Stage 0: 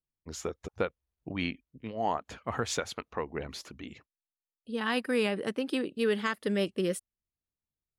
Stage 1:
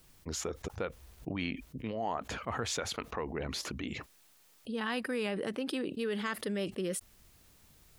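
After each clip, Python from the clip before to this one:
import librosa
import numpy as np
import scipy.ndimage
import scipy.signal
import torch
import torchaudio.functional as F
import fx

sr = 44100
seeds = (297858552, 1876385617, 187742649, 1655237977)

y = fx.env_flatten(x, sr, amount_pct=70)
y = F.gain(torch.from_numpy(y), -8.0).numpy()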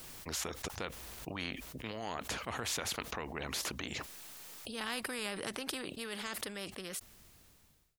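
y = fx.fade_out_tail(x, sr, length_s=2.63)
y = fx.spectral_comp(y, sr, ratio=2.0)
y = F.gain(torch.from_numpy(y), 3.5).numpy()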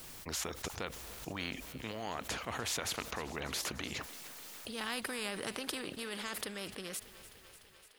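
y = fx.echo_thinned(x, sr, ms=296, feedback_pct=77, hz=240.0, wet_db=-16.5)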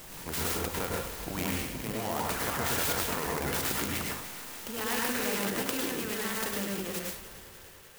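y = fx.rev_plate(x, sr, seeds[0], rt60_s=0.54, hf_ratio=0.9, predelay_ms=90, drr_db=-2.5)
y = fx.clock_jitter(y, sr, seeds[1], jitter_ms=0.064)
y = F.gain(torch.from_numpy(y), 4.0).numpy()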